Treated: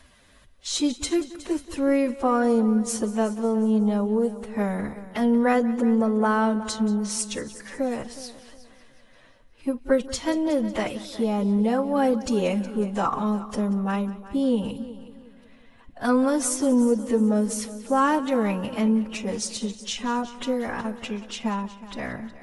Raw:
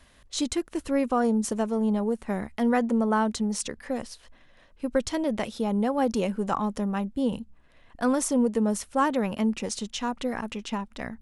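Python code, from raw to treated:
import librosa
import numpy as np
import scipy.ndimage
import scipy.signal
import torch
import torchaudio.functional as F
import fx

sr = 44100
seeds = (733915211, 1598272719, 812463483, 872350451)

p1 = fx.stretch_vocoder_free(x, sr, factor=2.0)
p2 = p1 + fx.echo_heads(p1, sr, ms=183, heads='first and second', feedback_pct=42, wet_db=-18, dry=0)
y = p2 * 10.0 ** (3.5 / 20.0)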